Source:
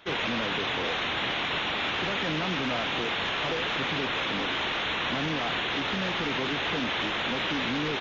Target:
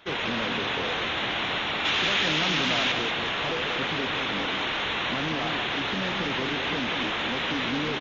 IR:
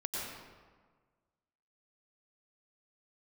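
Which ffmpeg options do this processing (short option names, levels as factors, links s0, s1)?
-filter_complex "[0:a]asettb=1/sr,asplit=3[s0][s1][s2];[s0]atrim=end=1.854[s3];[s1]atrim=start=1.85:end=2.92,asetpts=PTS-STARTPTS,afade=t=in:d=0.004:c=qsin,afade=t=out:st=1.066:d=0.004:c=qsin,highshelf=f=2600:g=11[s4];[s2]atrim=start=2.916[s5];[s3][s4]acrossfade=d=0.004:c1=hsin:c2=qsin[s6];[s6][s5]acrossfade=d=0.004:c1=qsin:c2=hsin,aecho=1:1:189:0.501"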